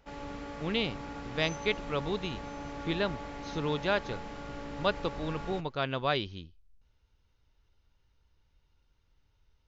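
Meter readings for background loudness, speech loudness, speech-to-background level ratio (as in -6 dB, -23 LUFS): -42.0 LUFS, -33.5 LUFS, 8.5 dB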